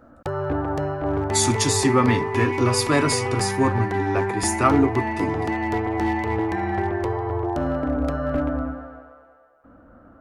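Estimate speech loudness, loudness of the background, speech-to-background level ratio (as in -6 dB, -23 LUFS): -22.5 LUFS, -25.0 LUFS, 2.5 dB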